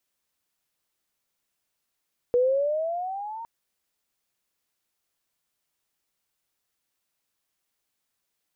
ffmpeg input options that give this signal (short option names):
-f lavfi -i "aevalsrc='pow(10,(-17-17*t/1.11)/20)*sin(2*PI*481*1.11/(11.5*log(2)/12)*(exp(11.5*log(2)/12*t/1.11)-1))':d=1.11:s=44100"